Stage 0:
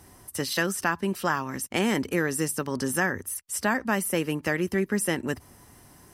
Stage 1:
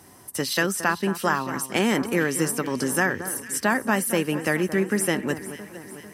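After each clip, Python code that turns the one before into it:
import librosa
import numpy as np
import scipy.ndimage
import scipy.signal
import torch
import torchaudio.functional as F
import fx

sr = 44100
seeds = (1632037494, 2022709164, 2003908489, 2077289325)

y = scipy.signal.sosfilt(scipy.signal.butter(2, 120.0, 'highpass', fs=sr, output='sos'), x)
y = fx.echo_alternate(y, sr, ms=224, hz=1700.0, feedback_pct=74, wet_db=-12.0)
y = y * librosa.db_to_amplitude(3.0)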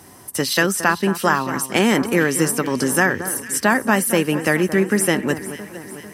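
y = fx.dmg_crackle(x, sr, seeds[0], per_s=17.0, level_db=-46.0)
y = y * librosa.db_to_amplitude(5.5)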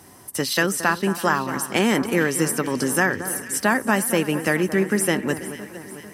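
y = x + 10.0 ** (-18.5 / 20.0) * np.pad(x, (int(328 * sr / 1000.0), 0))[:len(x)]
y = y * librosa.db_to_amplitude(-3.0)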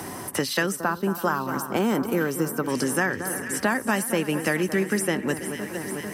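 y = fx.spec_box(x, sr, start_s=0.76, length_s=1.93, low_hz=1600.0, high_hz=12000.0, gain_db=-11)
y = fx.band_squash(y, sr, depth_pct=70)
y = y * librosa.db_to_amplitude(-3.5)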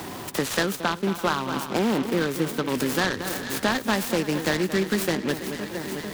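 y = fx.noise_mod_delay(x, sr, seeds[1], noise_hz=2000.0, depth_ms=0.066)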